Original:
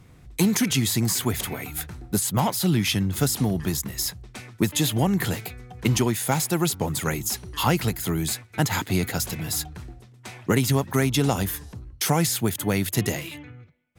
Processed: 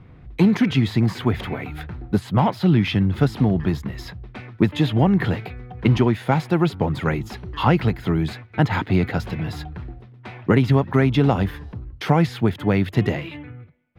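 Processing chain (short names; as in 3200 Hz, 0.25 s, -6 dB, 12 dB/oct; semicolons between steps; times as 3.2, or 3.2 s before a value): air absorption 370 m; gain +5.5 dB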